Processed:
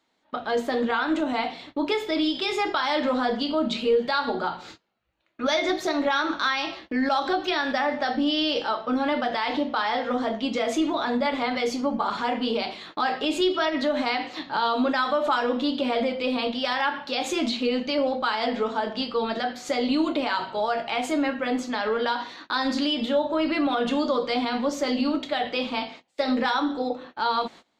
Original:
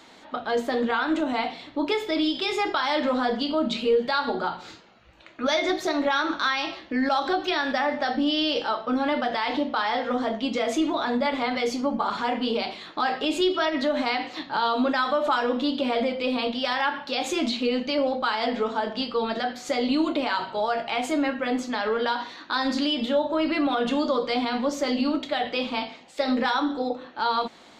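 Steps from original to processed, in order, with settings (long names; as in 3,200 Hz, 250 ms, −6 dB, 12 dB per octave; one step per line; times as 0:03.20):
noise gate −43 dBFS, range −22 dB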